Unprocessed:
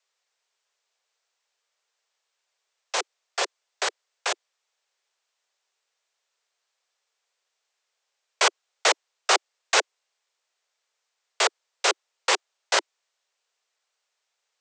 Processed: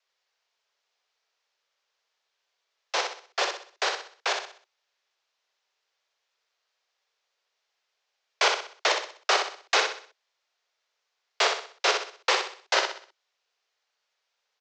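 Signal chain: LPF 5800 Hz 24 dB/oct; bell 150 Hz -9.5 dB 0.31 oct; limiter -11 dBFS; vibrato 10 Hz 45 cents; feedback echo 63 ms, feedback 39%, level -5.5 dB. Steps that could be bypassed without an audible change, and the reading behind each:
bell 150 Hz: input band starts at 300 Hz

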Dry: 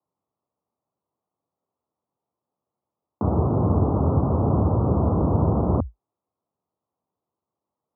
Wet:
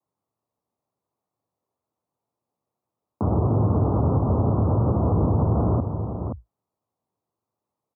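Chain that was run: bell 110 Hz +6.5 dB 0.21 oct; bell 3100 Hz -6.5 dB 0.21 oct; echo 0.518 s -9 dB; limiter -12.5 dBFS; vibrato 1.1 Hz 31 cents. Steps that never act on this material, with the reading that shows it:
bell 3100 Hz: input band ends at 1100 Hz

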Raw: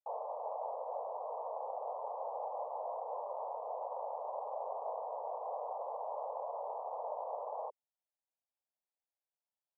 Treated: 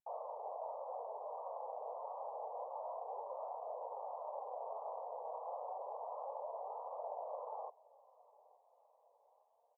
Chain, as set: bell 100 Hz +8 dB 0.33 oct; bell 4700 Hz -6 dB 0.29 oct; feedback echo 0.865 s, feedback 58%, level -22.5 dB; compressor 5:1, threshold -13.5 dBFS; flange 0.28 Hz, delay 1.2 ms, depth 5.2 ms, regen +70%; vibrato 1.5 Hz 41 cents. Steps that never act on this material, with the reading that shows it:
bell 100 Hz: input band starts at 380 Hz; bell 4700 Hz: input band ends at 1300 Hz; compressor, threshold -13.5 dBFS: input peak -28.5 dBFS

